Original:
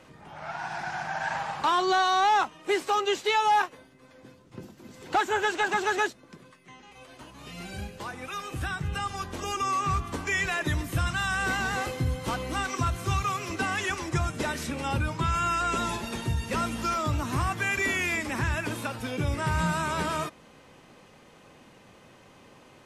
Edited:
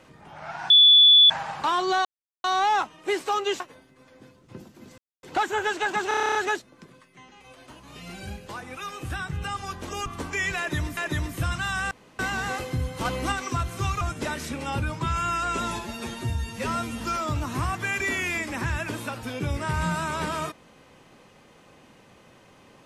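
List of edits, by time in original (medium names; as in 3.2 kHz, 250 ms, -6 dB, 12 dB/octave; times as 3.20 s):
0.70–1.30 s: bleep 3.45 kHz -10.5 dBFS
2.05 s: insert silence 0.39 s
3.21–3.63 s: delete
5.01 s: insert silence 0.25 s
5.86 s: stutter 0.03 s, 10 plays
9.57–10.00 s: delete
10.52–10.91 s: loop, 2 plays
11.46 s: insert room tone 0.28 s
12.32–12.59 s: gain +4 dB
13.28–14.19 s: delete
15.97–16.78 s: stretch 1.5×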